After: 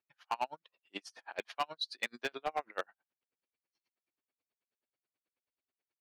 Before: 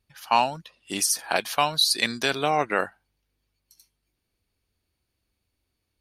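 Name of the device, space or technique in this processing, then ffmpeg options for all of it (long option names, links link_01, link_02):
helicopter radio: -af "highpass=370,lowpass=2700,aeval=exprs='val(0)*pow(10,-39*(0.5-0.5*cos(2*PI*9.3*n/s))/20)':channel_layout=same,asoftclip=type=hard:threshold=-21dB,volume=-4.5dB"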